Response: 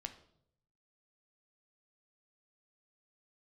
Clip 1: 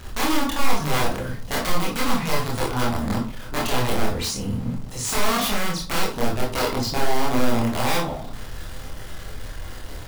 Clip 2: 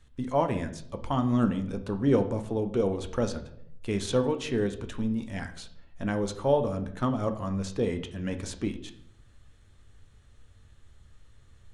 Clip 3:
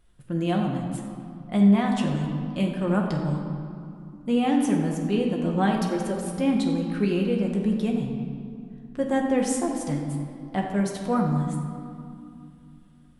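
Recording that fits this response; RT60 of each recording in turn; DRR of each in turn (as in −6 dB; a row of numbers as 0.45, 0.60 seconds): 2; 0.45, 0.70, 2.5 seconds; −4.5, 6.5, −0.5 decibels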